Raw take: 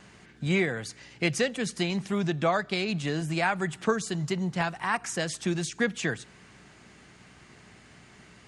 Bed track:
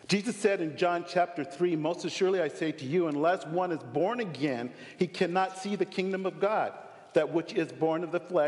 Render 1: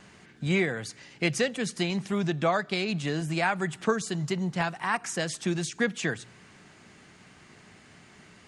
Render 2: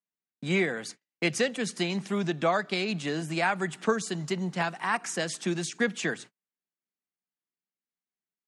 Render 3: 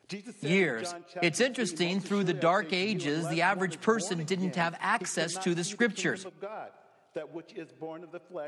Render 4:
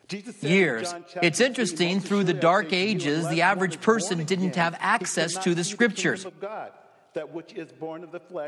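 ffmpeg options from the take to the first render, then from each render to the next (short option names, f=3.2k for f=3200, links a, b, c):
-af "bandreject=f=60:t=h:w=4,bandreject=f=120:t=h:w=4"
-af "agate=range=-49dB:threshold=-42dB:ratio=16:detection=peak,highpass=f=170:w=0.5412,highpass=f=170:w=1.3066"
-filter_complex "[1:a]volume=-12.5dB[a];[0:a][a]amix=inputs=2:normalize=0"
-af "volume=5.5dB"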